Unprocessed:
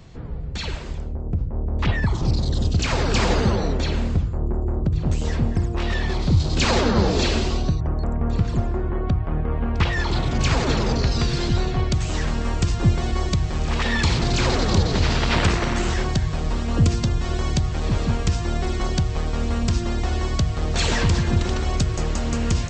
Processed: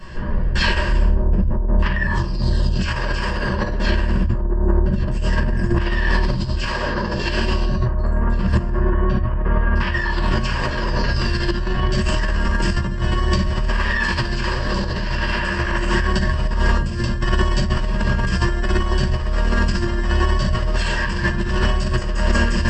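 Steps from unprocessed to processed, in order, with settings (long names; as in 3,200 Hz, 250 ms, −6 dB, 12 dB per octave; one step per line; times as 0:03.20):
parametric band 1,500 Hz +9.5 dB 1.2 octaves
rectangular room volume 58 cubic metres, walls mixed, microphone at 1.7 metres
compressor whose output falls as the input rises −15 dBFS, ratio −1
EQ curve with evenly spaced ripples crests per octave 1.3, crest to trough 11 dB
level −6 dB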